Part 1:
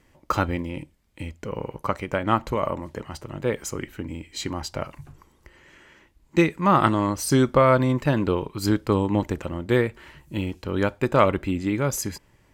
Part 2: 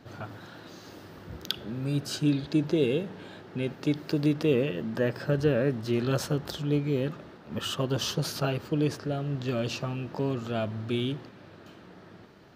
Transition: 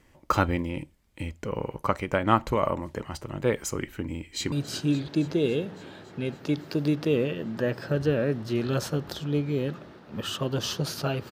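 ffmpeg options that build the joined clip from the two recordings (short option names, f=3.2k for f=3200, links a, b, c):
-filter_complex "[0:a]apad=whole_dur=11.31,atrim=end=11.31,atrim=end=4.522[a];[1:a]atrim=start=1.898:end=8.69[b];[a][b]acrossfade=d=0.004:c1=hsin:c2=hsin,asplit=2[c][d];[d]afade=t=in:st=4.12:d=0.01,afade=t=out:st=4.52:d=0.01,aecho=0:1:280|560|840|1120|1400|1680|1960|2240|2520|2800|3080:0.177828|0.133371|0.100028|0.0750212|0.0562659|0.0421994|0.0316496|0.0237372|0.0178029|0.0133522|0.0100141[e];[c][e]amix=inputs=2:normalize=0"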